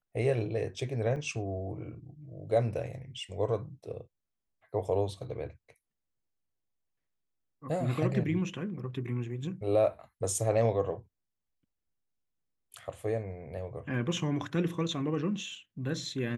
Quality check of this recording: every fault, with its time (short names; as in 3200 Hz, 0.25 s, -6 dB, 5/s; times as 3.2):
1.16–1.17 gap 5.1 ms